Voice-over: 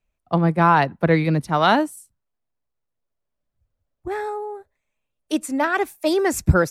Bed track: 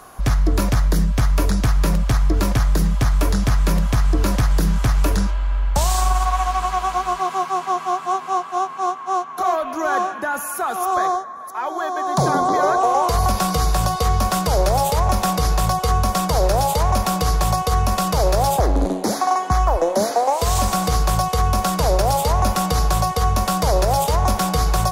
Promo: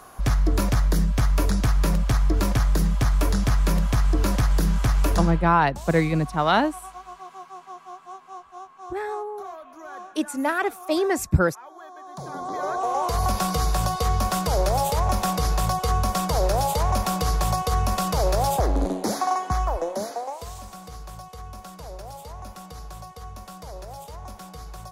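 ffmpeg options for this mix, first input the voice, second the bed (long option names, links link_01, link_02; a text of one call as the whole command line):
ffmpeg -i stem1.wav -i stem2.wav -filter_complex "[0:a]adelay=4850,volume=-3dB[link_01];[1:a]volume=11dB,afade=type=out:start_time=5.34:duration=0.21:silence=0.16788,afade=type=in:start_time=12.24:duration=1.09:silence=0.188365,afade=type=out:start_time=19.22:duration=1.36:silence=0.149624[link_02];[link_01][link_02]amix=inputs=2:normalize=0" out.wav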